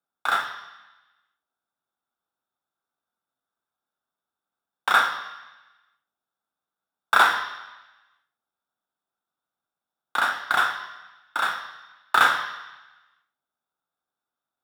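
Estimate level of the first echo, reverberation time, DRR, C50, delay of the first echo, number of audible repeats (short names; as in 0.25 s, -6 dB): none, 1.1 s, 6.0 dB, 9.5 dB, none, none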